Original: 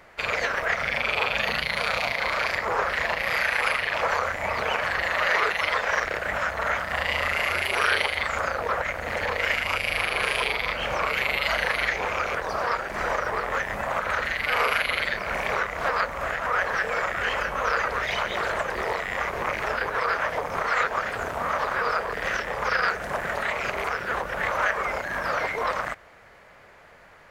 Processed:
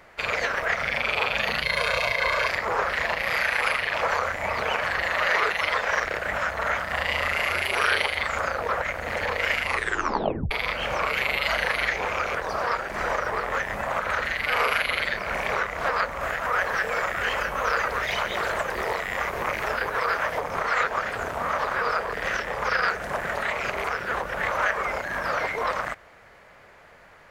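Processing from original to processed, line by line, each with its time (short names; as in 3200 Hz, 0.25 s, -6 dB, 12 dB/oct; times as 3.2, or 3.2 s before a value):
1.64–2.49 comb 1.9 ms
9.64 tape stop 0.87 s
16.23–20.4 high shelf 11000 Hz +9.5 dB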